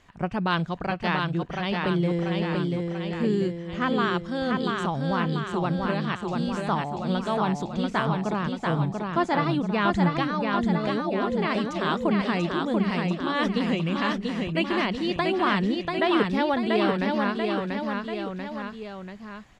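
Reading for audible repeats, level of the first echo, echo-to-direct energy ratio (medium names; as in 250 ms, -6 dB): 3, -3.5 dB, -2.0 dB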